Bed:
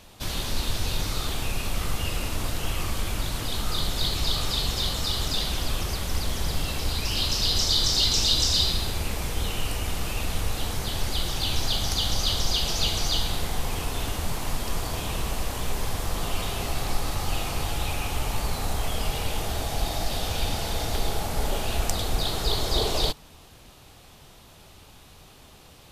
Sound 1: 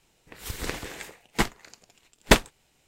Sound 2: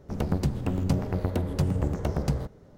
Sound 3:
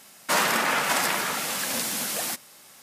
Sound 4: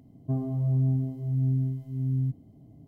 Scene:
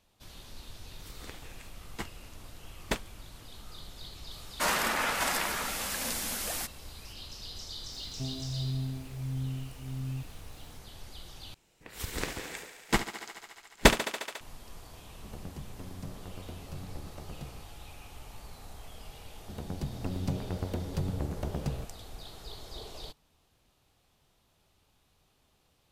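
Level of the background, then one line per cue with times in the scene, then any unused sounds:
bed -19.5 dB
0.60 s: add 1 -15 dB
4.31 s: add 3 -6 dB
7.91 s: add 4 -9 dB + added noise pink -52 dBFS
11.54 s: replace with 1 -2.5 dB + thinning echo 71 ms, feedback 83%, high-pass 230 Hz, level -12 dB
15.13 s: add 2 -17.5 dB
19.38 s: add 2 -13 dB + level rider gain up to 6 dB

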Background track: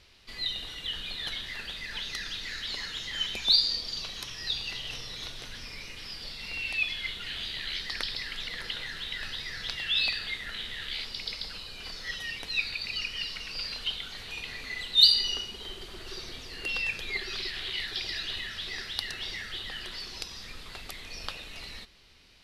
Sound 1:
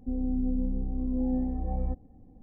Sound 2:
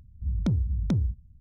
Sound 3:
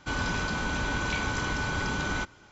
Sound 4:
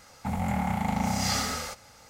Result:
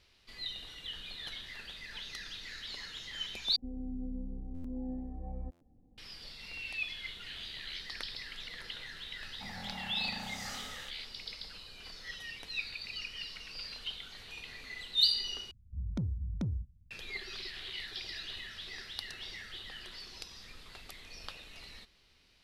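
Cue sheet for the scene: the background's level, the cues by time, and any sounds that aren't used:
background track -8 dB
3.56 s: replace with 1 -11 dB + buffer glitch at 0.98/1.95 s
9.16 s: add 4 -15 dB + bass shelf 140 Hz -9 dB
15.51 s: replace with 2 -9.5 dB
not used: 3

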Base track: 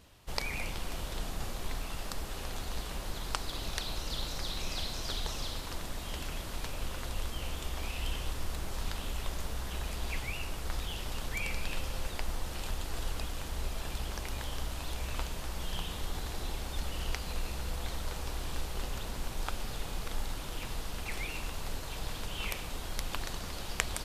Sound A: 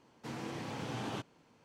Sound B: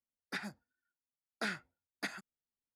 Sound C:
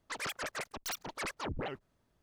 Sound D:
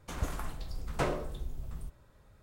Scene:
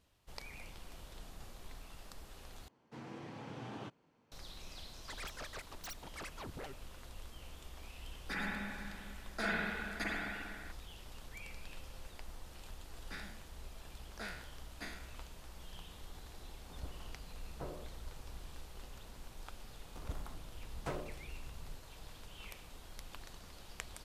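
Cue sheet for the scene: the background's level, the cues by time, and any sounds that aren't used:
base track -14 dB
2.68 s: replace with A -6.5 dB + treble shelf 4.4 kHz -9.5 dB
4.98 s: add C -9 dB
7.97 s: add B -3 dB + spring tank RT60 2.3 s, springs 44/50 ms, chirp 80 ms, DRR -7 dB
12.78 s: add B -10.5 dB + spectral sustain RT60 0.70 s
16.61 s: add D -13.5 dB + low-pass 1 kHz
19.87 s: add D -9.5 dB + local Wiener filter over 25 samples

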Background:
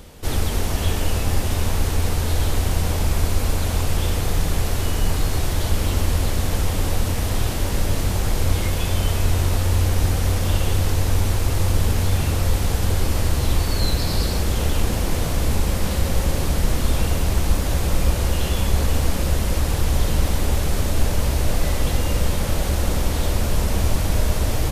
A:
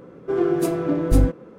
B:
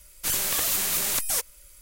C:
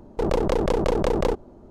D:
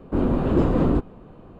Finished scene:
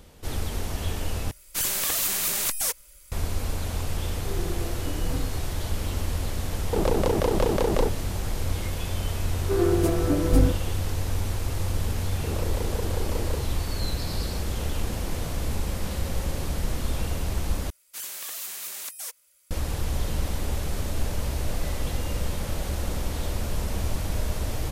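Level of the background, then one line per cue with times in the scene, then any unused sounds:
background -8 dB
1.31 s: replace with B -0.5 dB
3.98 s: add A -16 dB
6.54 s: add C -1.5 dB
9.21 s: add A -2.5 dB
12.05 s: add C -14.5 dB + doubling 35 ms -2 dB
17.70 s: replace with B -10 dB + high-pass 730 Hz 6 dB/octave
not used: D

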